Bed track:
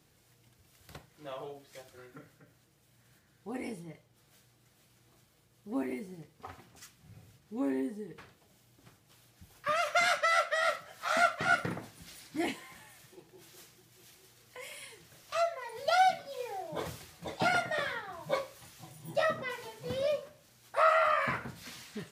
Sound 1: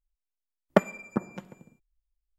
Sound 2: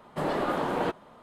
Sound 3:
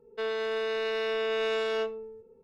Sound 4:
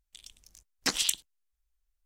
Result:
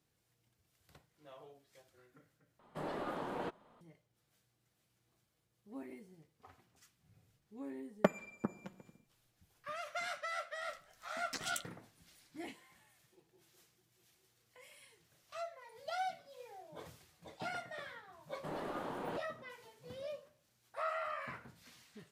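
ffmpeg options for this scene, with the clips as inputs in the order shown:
ffmpeg -i bed.wav -i cue0.wav -i cue1.wav -i cue2.wav -i cue3.wav -filter_complex "[2:a]asplit=2[link_01][link_02];[0:a]volume=-13.5dB[link_03];[4:a]asplit=2[link_04][link_05];[link_05]adelay=12,volume=-10.5dB[link_06];[link_04][link_06]amix=inputs=2:normalize=0[link_07];[link_03]asplit=2[link_08][link_09];[link_08]atrim=end=2.594[link_10];[link_01]atrim=end=1.22,asetpts=PTS-STARTPTS,volume=-12.5dB[link_11];[link_09]atrim=start=3.806[link_12];[1:a]atrim=end=2.38,asetpts=PTS-STARTPTS,volume=-9dB,afade=type=in:duration=0.004:curve=hsin,afade=type=out:start_time=2.376:duration=0.004:curve=hsin,adelay=7280[link_13];[link_07]atrim=end=2.05,asetpts=PTS-STARTPTS,volume=-15dB,afade=type=in:duration=0.004:curve=hsin,afade=type=out:start_time=2.046:duration=0.004:curve=hsin,adelay=10470[link_14];[link_02]atrim=end=1.22,asetpts=PTS-STARTPTS,volume=-13.5dB,afade=type=in:duration=0.004:curve=hsin,afade=type=out:start_time=1.216:duration=0.004:curve=hsin,adelay=18270[link_15];[link_10][link_11]acrossfade=duration=0.004:curve1=hsin:curve2=hsin[link_16];[link_16][link_12]acrossfade=duration=0.004:curve1=hsin:curve2=hsin[link_17];[link_17][link_13][link_14][link_15]amix=inputs=4:normalize=0" out.wav

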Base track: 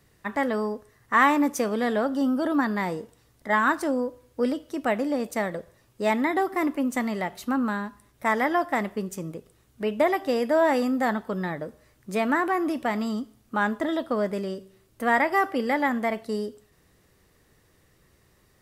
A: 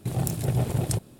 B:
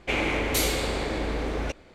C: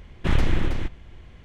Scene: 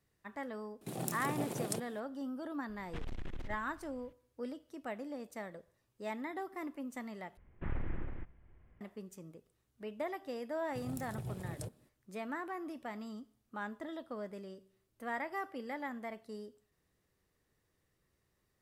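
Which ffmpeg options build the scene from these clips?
ffmpeg -i bed.wav -i cue0.wav -i cue1.wav -i cue2.wav -filter_complex "[1:a]asplit=2[link_01][link_02];[3:a]asplit=2[link_03][link_04];[0:a]volume=-17dB[link_05];[link_01]highpass=frequency=180:width=0.5412,highpass=frequency=180:width=1.3066[link_06];[link_03]aeval=exprs='(tanh(12.6*val(0)+0.45)-tanh(0.45))/12.6':channel_layout=same[link_07];[link_04]lowpass=frequency=2100:width=0.5412,lowpass=frequency=2100:width=1.3066[link_08];[link_05]asplit=2[link_09][link_10];[link_09]atrim=end=7.374[link_11];[link_08]atrim=end=1.44,asetpts=PTS-STARTPTS,volume=-17dB[link_12];[link_10]atrim=start=8.806[link_13];[link_06]atrim=end=1.19,asetpts=PTS-STARTPTS,volume=-7dB,afade=type=in:duration=0.004:curve=hsin,afade=type=out:start_time=1.186:duration=0.004:curve=hsin,adelay=810[link_14];[link_07]atrim=end=1.44,asetpts=PTS-STARTPTS,volume=-14.5dB,afade=type=in:duration=0.004:curve=hsin,afade=type=out:start_time=1.436:duration=0.004:curve=hsin,adelay=2690[link_15];[link_02]atrim=end=1.19,asetpts=PTS-STARTPTS,volume=-17.5dB,afade=type=in:duration=0.004:curve=hsin,afade=type=out:start_time=1.186:duration=0.004:curve=hsin,adelay=10700[link_16];[link_11][link_12]acrossfade=duration=0.004:curve1=hsin:curve2=hsin[link_17];[link_17][link_13]acrossfade=duration=0.004:curve1=hsin:curve2=hsin[link_18];[link_18][link_14][link_15][link_16]amix=inputs=4:normalize=0" out.wav

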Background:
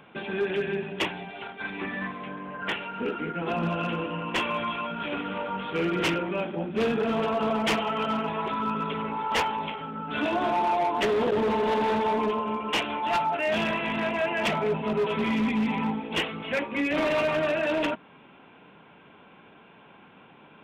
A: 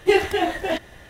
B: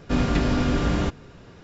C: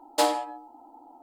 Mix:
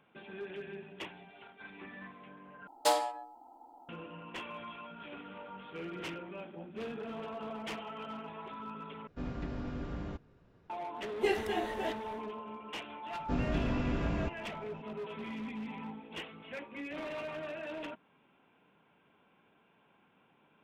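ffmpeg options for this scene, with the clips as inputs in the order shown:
ffmpeg -i bed.wav -i cue0.wav -i cue1.wav -i cue2.wav -filter_complex "[2:a]asplit=2[link_01][link_02];[0:a]volume=-15.5dB[link_03];[3:a]equalizer=frequency=300:width_type=o:width=0.33:gain=-9[link_04];[link_01]lowpass=frequency=1700:poles=1[link_05];[link_02]highshelf=frequency=2200:gain=-10.5[link_06];[link_03]asplit=3[link_07][link_08][link_09];[link_07]atrim=end=2.674[link_10];[link_04]atrim=end=1.22,asetpts=PTS-STARTPTS,volume=-4.5dB[link_11];[link_08]atrim=start=3.886:end=9.074[link_12];[link_05]atrim=end=1.63,asetpts=PTS-STARTPTS,volume=-17dB[link_13];[link_09]atrim=start=10.696[link_14];[1:a]atrim=end=1.09,asetpts=PTS-STARTPTS,volume=-13dB,afade=type=in:duration=0.1,afade=type=out:start_time=0.99:duration=0.1,adelay=11150[link_15];[link_06]atrim=end=1.63,asetpts=PTS-STARTPTS,volume=-10.5dB,afade=type=in:duration=0.004:curve=hsin,afade=type=out:start_time=1.626:duration=0.004:curve=hsin,adelay=13190[link_16];[link_10][link_11]acrossfade=duration=0.004:curve1=hsin:curve2=hsin[link_17];[link_17][link_12]acrossfade=duration=0.004:curve1=hsin:curve2=hsin[link_18];[link_18][link_13]acrossfade=duration=0.004:curve1=hsin:curve2=hsin[link_19];[link_19][link_14]acrossfade=duration=0.004:curve1=hsin:curve2=hsin[link_20];[link_20][link_15][link_16]amix=inputs=3:normalize=0" out.wav

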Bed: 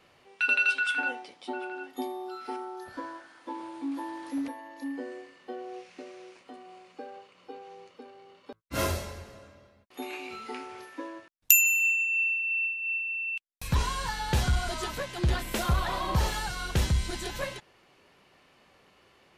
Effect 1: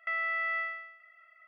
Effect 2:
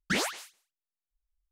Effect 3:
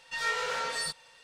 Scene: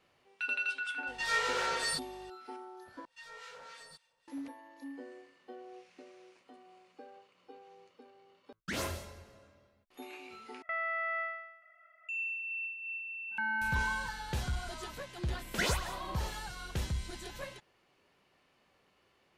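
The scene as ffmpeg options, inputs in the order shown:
ffmpeg -i bed.wav -i cue0.wav -i cue1.wav -i cue2.wav -filter_complex "[3:a]asplit=2[link_01][link_02];[2:a]asplit=2[link_03][link_04];[1:a]asplit=2[link_05][link_06];[0:a]volume=-9.5dB[link_07];[link_01]aeval=exprs='val(0)+0.00112*(sin(2*PI*50*n/s)+sin(2*PI*2*50*n/s)/2+sin(2*PI*3*50*n/s)/3+sin(2*PI*4*50*n/s)/4+sin(2*PI*5*50*n/s)/5)':channel_layout=same[link_08];[link_02]acrossover=split=1100[link_09][link_10];[link_09]aeval=exprs='val(0)*(1-0.7/2+0.7/2*cos(2*PI*3.6*n/s))':channel_layout=same[link_11];[link_10]aeval=exprs='val(0)*(1-0.7/2-0.7/2*cos(2*PI*3.6*n/s))':channel_layout=same[link_12];[link_11][link_12]amix=inputs=2:normalize=0[link_13];[link_05]tiltshelf=frequency=1400:gain=9.5[link_14];[link_06]afreqshift=-440[link_15];[link_04]aecho=1:1:2:0.55[link_16];[link_07]asplit=3[link_17][link_18][link_19];[link_17]atrim=end=3.054[link_20];[link_13]atrim=end=1.23,asetpts=PTS-STARTPTS,volume=-14.5dB[link_21];[link_18]atrim=start=4.276:end=10.624[link_22];[link_14]atrim=end=1.47,asetpts=PTS-STARTPTS,volume=-1.5dB[link_23];[link_19]atrim=start=12.086[link_24];[link_08]atrim=end=1.23,asetpts=PTS-STARTPTS,volume=-0.5dB,afade=type=in:duration=0.004:curve=hsin,afade=type=out:start_time=1.226:duration=0.004:curve=hsin,adelay=1070[link_25];[link_03]atrim=end=1.51,asetpts=PTS-STARTPTS,volume=-10dB,afade=type=in:duration=0.004:curve=hsin,afade=type=out:start_time=1.506:duration=0.004:curve=hsin,adelay=378378S[link_26];[link_15]atrim=end=1.47,asetpts=PTS-STARTPTS,volume=-1.5dB,afade=type=in:duration=0.004:curve=hsin,afade=type=out:start_time=1.466:duration=0.004:curve=hsin,adelay=13310[link_27];[link_16]atrim=end=1.51,asetpts=PTS-STARTPTS,volume=-4.5dB,afade=type=in:duration=0.004:curve=hsin,afade=type=out:start_time=1.506:duration=0.004:curve=hsin,adelay=15480[link_28];[link_20][link_21]acrossfade=duration=0.004:curve1=hsin:curve2=hsin[link_29];[link_29][link_22]acrossfade=duration=0.004:curve1=hsin:curve2=hsin[link_30];[link_30][link_23]acrossfade=duration=0.004:curve1=hsin:curve2=hsin[link_31];[link_31][link_24]acrossfade=duration=0.004:curve1=hsin:curve2=hsin[link_32];[link_32][link_25][link_26][link_27][link_28]amix=inputs=5:normalize=0" out.wav

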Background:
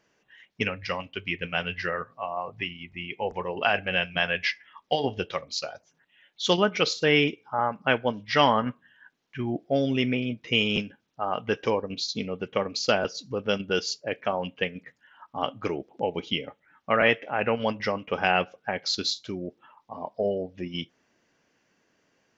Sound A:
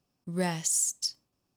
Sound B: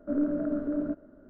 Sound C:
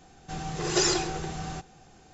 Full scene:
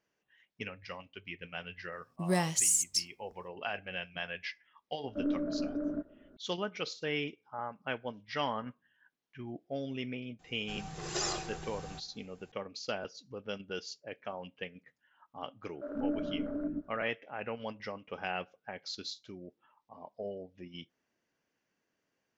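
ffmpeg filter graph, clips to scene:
ffmpeg -i bed.wav -i cue0.wav -i cue1.wav -i cue2.wav -filter_complex "[2:a]asplit=2[link_01][link_02];[0:a]volume=-13.5dB[link_03];[3:a]equalizer=frequency=330:width=1.5:gain=-4[link_04];[link_02]acrossover=split=400[link_05][link_06];[link_05]adelay=130[link_07];[link_07][link_06]amix=inputs=2:normalize=0[link_08];[1:a]atrim=end=1.56,asetpts=PTS-STARTPTS,afade=type=in:duration=0.004:curve=hsin,afade=type=out:start_time=1.556:duration=0.004:curve=hsin,adelay=1920[link_09];[link_01]atrim=end=1.29,asetpts=PTS-STARTPTS,volume=-5dB,afade=type=in:duration=0.004:curve=hsin,afade=type=out:start_time=1.286:duration=0.004:curve=hsin,adelay=5080[link_10];[link_04]atrim=end=2.13,asetpts=PTS-STARTPTS,volume=-9.5dB,afade=type=in:duration=0.004:curve=hsin,afade=type=out:start_time=2.126:duration=0.004:curve=hsin,adelay=10390[link_11];[link_08]atrim=end=1.29,asetpts=PTS-STARTPTS,volume=-3.5dB,afade=type=in:duration=0.004:curve=hsin,afade=type=out:start_time=1.286:duration=0.004:curve=hsin,adelay=15740[link_12];[link_03][link_09][link_10][link_11][link_12]amix=inputs=5:normalize=0" out.wav

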